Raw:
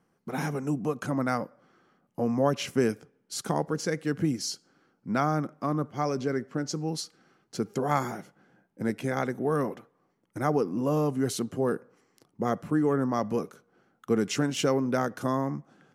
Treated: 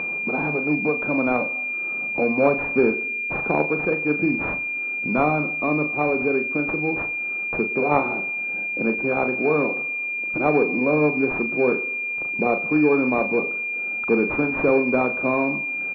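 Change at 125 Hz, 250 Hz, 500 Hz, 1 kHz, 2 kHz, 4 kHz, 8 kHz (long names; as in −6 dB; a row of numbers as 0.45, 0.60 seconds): −1.0 dB, +5.5 dB, +7.5 dB, +5.5 dB, +18.5 dB, below −15 dB, below −20 dB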